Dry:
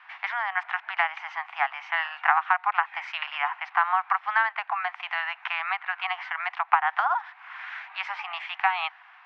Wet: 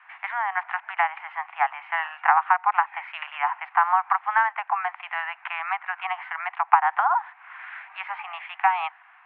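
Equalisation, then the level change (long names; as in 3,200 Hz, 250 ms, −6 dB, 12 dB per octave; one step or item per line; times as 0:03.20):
low-pass filter 2,700 Hz 24 dB per octave
dynamic equaliser 890 Hz, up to +7 dB, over −38 dBFS, Q 2.2
−1.0 dB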